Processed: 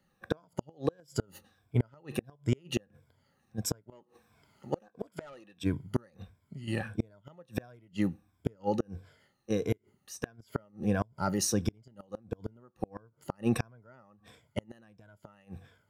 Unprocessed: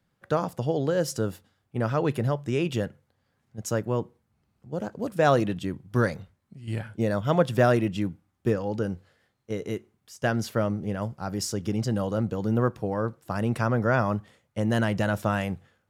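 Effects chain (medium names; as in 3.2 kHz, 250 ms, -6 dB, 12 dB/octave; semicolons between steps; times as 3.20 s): drifting ripple filter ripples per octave 1.7, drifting -1.5 Hz, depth 13 dB; 3.92–5.64 s: overdrive pedal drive 18 dB, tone 6.9 kHz, clips at -6.5 dBFS; inverted gate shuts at -15 dBFS, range -35 dB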